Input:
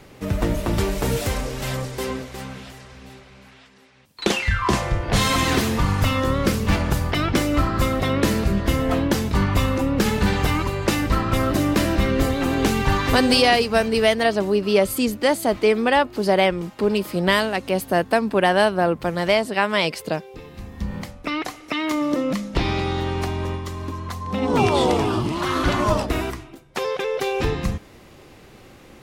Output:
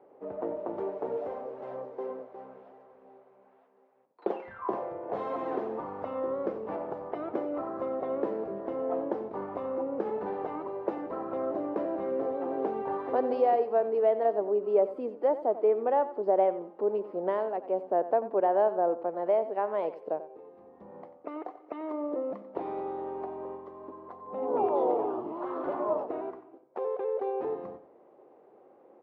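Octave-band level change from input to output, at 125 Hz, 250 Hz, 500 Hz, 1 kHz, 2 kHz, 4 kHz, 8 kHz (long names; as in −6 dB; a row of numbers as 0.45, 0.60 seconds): below −30 dB, −15.0 dB, −5.5 dB, −8.5 dB, −25.5 dB, below −35 dB, below −40 dB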